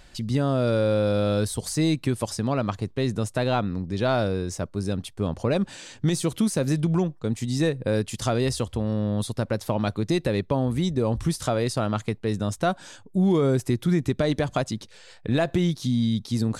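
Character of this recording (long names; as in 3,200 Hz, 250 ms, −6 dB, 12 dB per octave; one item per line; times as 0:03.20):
background noise floor −50 dBFS
spectral slope −6.5 dB per octave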